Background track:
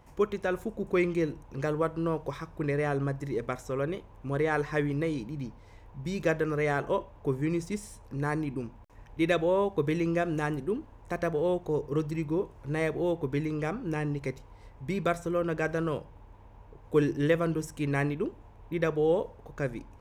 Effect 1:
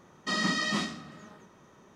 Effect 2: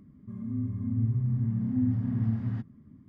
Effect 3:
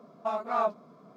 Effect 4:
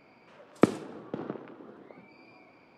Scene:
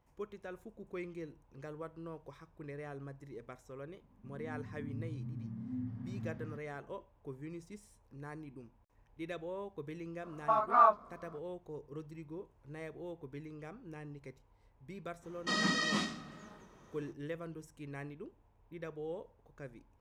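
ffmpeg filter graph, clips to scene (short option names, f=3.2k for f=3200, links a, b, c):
-filter_complex "[0:a]volume=-16.5dB[a];[2:a]lowshelf=f=220:g=-7[b];[3:a]equalizer=f=1.2k:t=o:w=1.2:g=14[c];[b]atrim=end=3.08,asetpts=PTS-STARTPTS,volume=-10dB,afade=t=in:d=0.004:c=hsin,afade=t=out:st=3.076:d=0.004:c=hsin,adelay=3960[d];[c]atrim=end=1.16,asetpts=PTS-STARTPTS,volume=-7.5dB,afade=t=in:d=0.004:c=hsin,afade=t=out:st=1.156:d=0.004:c=hsin,adelay=10230[e];[1:a]atrim=end=1.95,asetpts=PTS-STARTPTS,volume=-3.5dB,afade=t=in:d=0.05,afade=t=out:st=1.9:d=0.05,adelay=15200[f];[a][d][e][f]amix=inputs=4:normalize=0"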